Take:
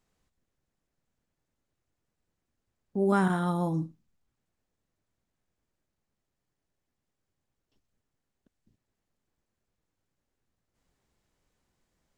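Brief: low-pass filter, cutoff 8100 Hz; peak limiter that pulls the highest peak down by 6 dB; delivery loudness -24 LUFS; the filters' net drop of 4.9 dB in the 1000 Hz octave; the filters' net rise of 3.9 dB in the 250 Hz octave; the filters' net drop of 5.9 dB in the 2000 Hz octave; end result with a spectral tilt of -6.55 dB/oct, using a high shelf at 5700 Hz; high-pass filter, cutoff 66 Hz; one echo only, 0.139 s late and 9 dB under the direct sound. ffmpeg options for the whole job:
-af "highpass=66,lowpass=8.1k,equalizer=f=250:t=o:g=7,equalizer=f=1k:t=o:g=-5.5,equalizer=f=2k:t=o:g=-5,highshelf=f=5.7k:g=-9,alimiter=limit=-18dB:level=0:latency=1,aecho=1:1:139:0.355,volume=3.5dB"

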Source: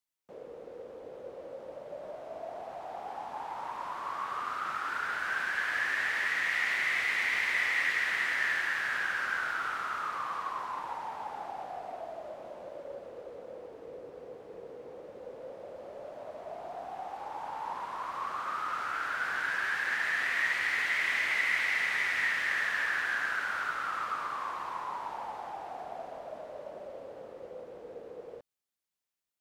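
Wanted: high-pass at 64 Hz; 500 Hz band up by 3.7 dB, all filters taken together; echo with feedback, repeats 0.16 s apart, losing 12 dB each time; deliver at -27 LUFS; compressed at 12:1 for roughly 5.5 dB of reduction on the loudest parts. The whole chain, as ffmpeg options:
-af "highpass=64,equalizer=f=500:t=o:g=4.5,acompressor=threshold=-31dB:ratio=12,aecho=1:1:160|320|480:0.251|0.0628|0.0157,volume=8.5dB"

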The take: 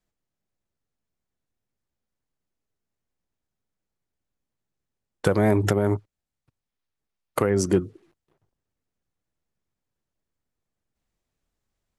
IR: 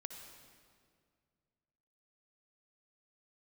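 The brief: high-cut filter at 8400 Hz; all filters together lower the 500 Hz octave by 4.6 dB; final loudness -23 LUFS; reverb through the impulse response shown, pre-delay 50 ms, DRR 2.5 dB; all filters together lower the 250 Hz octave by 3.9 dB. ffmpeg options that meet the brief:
-filter_complex "[0:a]lowpass=8.4k,equalizer=f=250:t=o:g=-4,equalizer=f=500:t=o:g=-4.5,asplit=2[a][b];[1:a]atrim=start_sample=2205,adelay=50[c];[b][c]afir=irnorm=-1:irlink=0,volume=1dB[d];[a][d]amix=inputs=2:normalize=0,volume=2dB"

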